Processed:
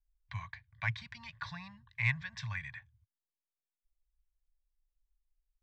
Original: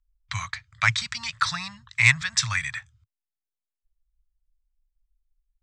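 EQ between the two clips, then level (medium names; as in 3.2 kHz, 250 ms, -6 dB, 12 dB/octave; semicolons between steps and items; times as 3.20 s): Butterworth band-stop 1.3 kHz, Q 4.4; distance through air 53 m; tape spacing loss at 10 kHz 30 dB; -7.5 dB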